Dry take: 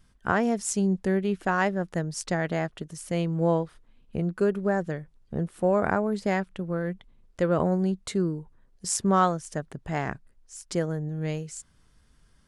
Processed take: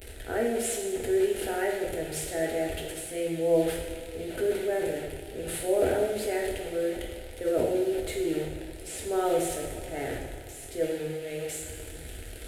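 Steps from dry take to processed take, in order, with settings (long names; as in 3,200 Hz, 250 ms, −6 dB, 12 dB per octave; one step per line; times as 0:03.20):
linear delta modulator 64 kbit/s, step −32 dBFS
high-pass filter 44 Hz
parametric band 5,600 Hz −15 dB 0.89 octaves
transient designer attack −5 dB, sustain +9 dB
phaser with its sweep stopped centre 450 Hz, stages 4
convolution reverb, pre-delay 3 ms, DRR −1.5 dB
level −2 dB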